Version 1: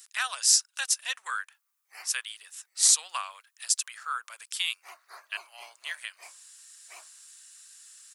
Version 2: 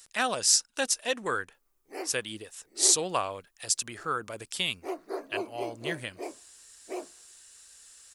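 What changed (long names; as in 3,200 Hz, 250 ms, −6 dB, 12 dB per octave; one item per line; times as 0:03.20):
speech: add high-shelf EQ 8,400 Hz −4 dB
master: remove high-pass filter 1,100 Hz 24 dB per octave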